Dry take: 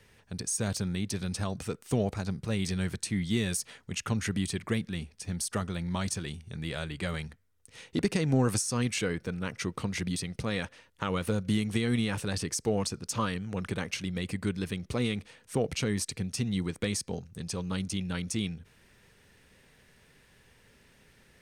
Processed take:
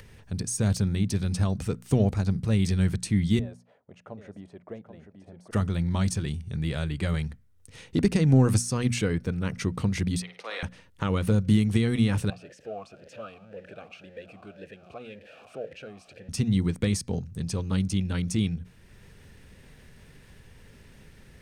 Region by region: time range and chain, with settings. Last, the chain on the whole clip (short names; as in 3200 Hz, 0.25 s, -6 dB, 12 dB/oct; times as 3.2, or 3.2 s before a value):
3.39–5.51 band-pass 620 Hz, Q 3.6 + echo 0.785 s -9 dB
10.22–10.63 HPF 360 Hz 24 dB/oct + three-band isolator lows -15 dB, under 570 Hz, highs -13 dB, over 5100 Hz + flutter echo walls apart 9.1 m, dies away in 0.45 s
12.3–16.29 zero-crossing step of -34.5 dBFS + vowel sweep a-e 1.9 Hz
whole clip: low shelf 240 Hz +12 dB; notches 60/120/180/240 Hz; upward compressor, threshold -44 dBFS